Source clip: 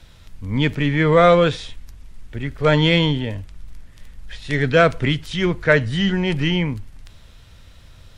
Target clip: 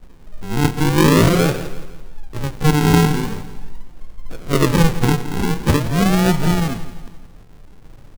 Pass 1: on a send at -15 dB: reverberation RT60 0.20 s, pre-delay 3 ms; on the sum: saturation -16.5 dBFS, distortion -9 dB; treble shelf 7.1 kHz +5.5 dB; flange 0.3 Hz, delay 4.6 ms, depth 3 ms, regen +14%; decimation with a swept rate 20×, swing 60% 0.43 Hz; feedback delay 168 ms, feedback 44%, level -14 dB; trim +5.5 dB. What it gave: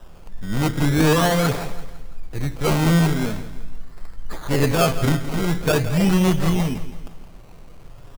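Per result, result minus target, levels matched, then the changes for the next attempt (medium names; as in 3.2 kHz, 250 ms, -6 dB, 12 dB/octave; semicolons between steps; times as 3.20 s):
saturation: distortion +13 dB; decimation with a swept rate: distortion -9 dB
change: saturation -5 dBFS, distortion -22 dB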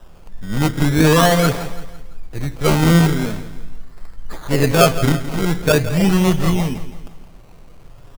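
decimation with a swept rate: distortion -7 dB
change: decimation with a swept rate 58×, swing 60% 0.43 Hz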